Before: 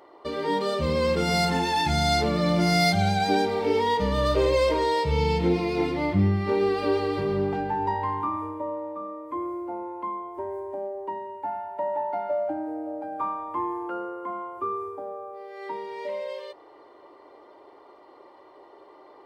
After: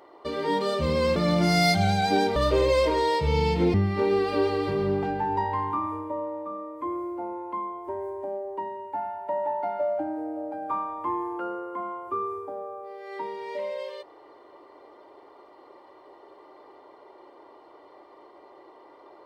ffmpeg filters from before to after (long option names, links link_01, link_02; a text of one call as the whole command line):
ffmpeg -i in.wav -filter_complex "[0:a]asplit=4[link_01][link_02][link_03][link_04];[link_01]atrim=end=1.162[link_05];[link_02]atrim=start=2.338:end=3.542[link_06];[link_03]atrim=start=4.198:end=5.582[link_07];[link_04]atrim=start=6.238[link_08];[link_05][link_06]acrossfade=duration=0.004:curve1=hsin:curve2=hsin[link_09];[link_09][link_07]acrossfade=duration=0.004:curve1=hsin:curve2=hsin[link_10];[link_10][link_08]acrossfade=duration=0.004:curve1=hsin:curve2=hsin" out.wav